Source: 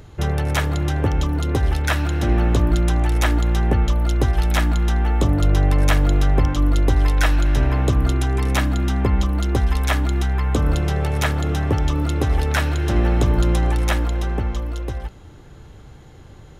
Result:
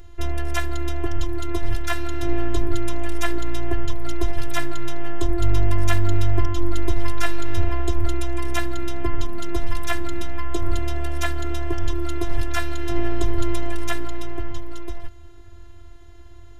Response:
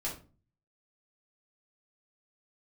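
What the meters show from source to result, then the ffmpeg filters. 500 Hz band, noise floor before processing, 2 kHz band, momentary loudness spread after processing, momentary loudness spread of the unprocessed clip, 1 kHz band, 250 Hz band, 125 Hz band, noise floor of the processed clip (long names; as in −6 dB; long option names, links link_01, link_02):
−3.5 dB, −43 dBFS, −4.5 dB, 8 LU, 4 LU, −5.0 dB, −5.0 dB, −8.5 dB, −40 dBFS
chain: -af "afftfilt=real='hypot(re,im)*cos(PI*b)':imag='0':win_size=512:overlap=0.75,lowshelf=frequency=120:width_type=q:width=3:gain=7.5,volume=-1dB"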